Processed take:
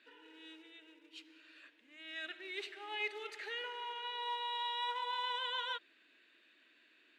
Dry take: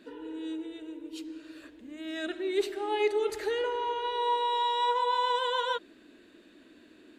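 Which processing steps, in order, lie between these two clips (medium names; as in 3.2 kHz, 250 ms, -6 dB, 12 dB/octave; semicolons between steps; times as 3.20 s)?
in parallel at -7 dB: short-mantissa float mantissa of 2-bit; on the sum: band-pass filter 2.4 kHz, Q 1.6; trim -4 dB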